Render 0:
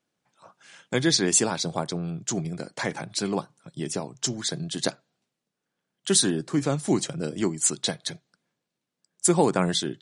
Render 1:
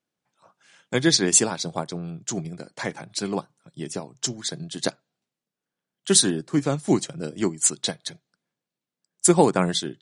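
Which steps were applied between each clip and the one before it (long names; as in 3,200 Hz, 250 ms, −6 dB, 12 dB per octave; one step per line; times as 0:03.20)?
expander for the loud parts 1.5 to 1, over −36 dBFS
level +4.5 dB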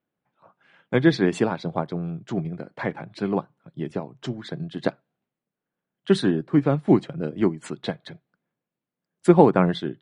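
high-frequency loss of the air 490 metres
level +4 dB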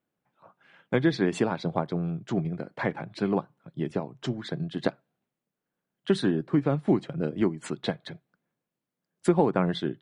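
downward compressor 2.5 to 1, threshold −21 dBFS, peak gain reduction 9 dB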